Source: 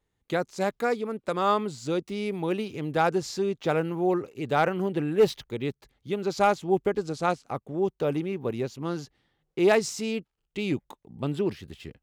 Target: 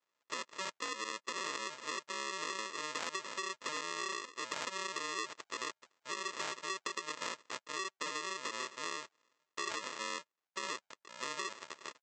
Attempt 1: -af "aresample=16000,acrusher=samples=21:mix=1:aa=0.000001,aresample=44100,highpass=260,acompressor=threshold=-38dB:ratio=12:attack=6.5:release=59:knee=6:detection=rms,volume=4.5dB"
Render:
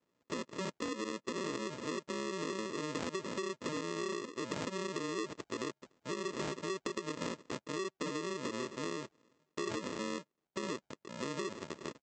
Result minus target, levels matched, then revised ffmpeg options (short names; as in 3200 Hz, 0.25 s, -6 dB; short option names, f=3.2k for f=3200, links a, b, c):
250 Hz band +13.0 dB
-af "aresample=16000,acrusher=samples=21:mix=1:aa=0.000001,aresample=44100,highpass=930,acompressor=threshold=-38dB:ratio=12:attack=6.5:release=59:knee=6:detection=rms,volume=4.5dB"